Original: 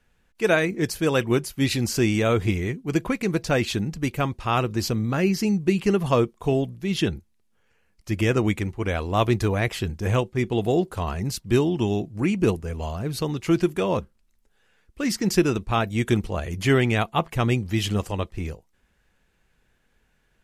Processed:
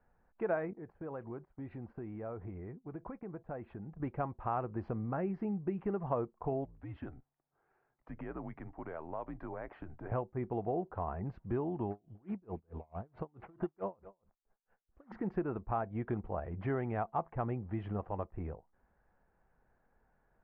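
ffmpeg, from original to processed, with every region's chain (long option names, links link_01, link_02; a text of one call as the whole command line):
ffmpeg -i in.wav -filter_complex "[0:a]asettb=1/sr,asplit=3[link_01][link_02][link_03];[link_01]atrim=end=0.734[link_04];[link_02]atrim=start=0.73:end=4,asetpts=PTS-STARTPTS,afade=type=in:duration=0.004:curve=qsin,afade=type=out:start_time=3.266:duration=0.004:curve=qsin,aemphasis=mode=reproduction:type=75kf,agate=range=-15dB:threshold=-36dB:ratio=16:release=100:detection=peak,acompressor=threshold=-41dB:ratio=2.5:attack=3.2:release=140:knee=1:detection=peak[link_05];[link_03]atrim=start=3.996[link_06];[link_04][link_05]acrossfade=duration=0.004:curve1=hsin:curve2=qsin[link_07];[link_07][link_06]acrossfade=duration=0.004:curve1=qsin:curve2=hsin,asettb=1/sr,asplit=3[link_08][link_09][link_10];[link_08]atrim=end=6.654[link_11];[link_09]atrim=start=6.65:end=10.12,asetpts=PTS-STARTPTS,afade=type=in:duration=0.004:curve=qsin,afade=type=out:start_time=3.466:duration=0.004:curve=qsin,highpass=frequency=210:poles=1,afreqshift=-77,acompressor=threshold=-40dB:ratio=2:attack=3.2:release=140:knee=1:detection=peak[link_12];[link_10]atrim=start=10.116[link_13];[link_11][link_12]acrossfade=duration=0.004:curve1=hsin:curve2=qsin[link_14];[link_14][link_13]acrossfade=duration=0.004:curve1=qsin:curve2=hsin,asettb=1/sr,asplit=3[link_15][link_16][link_17];[link_15]atrim=end=11.904[link_18];[link_16]atrim=start=11.9:end=15.12,asetpts=PTS-STARTPTS,afade=type=in:duration=0.004:curve=qsin,afade=type=out:start_time=3.216:duration=0.004:curve=qsin,acrusher=samples=8:mix=1:aa=0.000001:lfo=1:lforange=12.8:lforate=1.3,aecho=1:1:246:0.075,atrim=end_sample=142002,aeval=exprs='val(0)*pow(10,-39*(0.5-0.5*cos(2*PI*4.6*n/s))/20)':channel_layout=same[link_19];[link_17]atrim=start=15.116[link_20];[link_18][link_19]acrossfade=duration=0.004:curve1=hsin:curve2=qsin[link_21];[link_21][link_20]acrossfade=duration=0.004:curve1=qsin:curve2=hsin,lowpass=frequency=1600:width=0.5412,lowpass=frequency=1600:width=1.3066,equalizer=frequency=760:width=1.4:gain=9,acompressor=threshold=-32dB:ratio=2,volume=-7dB" out.wav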